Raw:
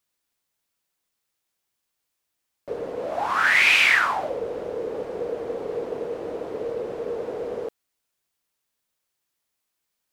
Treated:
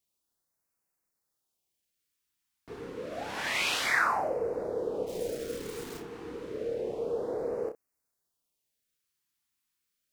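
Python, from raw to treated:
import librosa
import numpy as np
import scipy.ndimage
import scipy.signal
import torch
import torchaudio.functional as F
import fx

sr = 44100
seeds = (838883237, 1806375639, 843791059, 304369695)

y = fx.delta_hold(x, sr, step_db=-33.5, at=(5.06, 5.98), fade=0.02)
y = fx.room_early_taps(y, sr, ms=(30, 63), db=(-5.5, -16.0))
y = fx.filter_lfo_notch(y, sr, shape='sine', hz=0.29, low_hz=550.0, high_hz=3500.0, q=0.72)
y = y * 10.0 ** (-3.5 / 20.0)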